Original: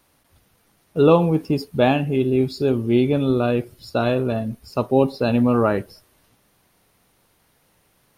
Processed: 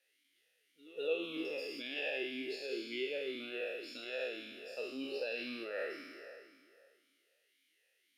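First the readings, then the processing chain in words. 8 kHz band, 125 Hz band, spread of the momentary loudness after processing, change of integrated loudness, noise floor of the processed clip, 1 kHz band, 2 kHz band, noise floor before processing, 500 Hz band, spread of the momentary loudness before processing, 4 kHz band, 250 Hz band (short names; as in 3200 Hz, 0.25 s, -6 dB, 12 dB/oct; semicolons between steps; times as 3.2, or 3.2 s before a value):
n/a, under -40 dB, 10 LU, -20.0 dB, -77 dBFS, -29.5 dB, -8.5 dB, -63 dBFS, -19.5 dB, 10 LU, -8.0 dB, -25.5 dB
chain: spectral trails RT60 2.21 s; differentiator; reverse echo 0.21 s -22 dB; limiter -25.5 dBFS, peak gain reduction 8 dB; vowel sweep e-i 1.9 Hz; gain +9.5 dB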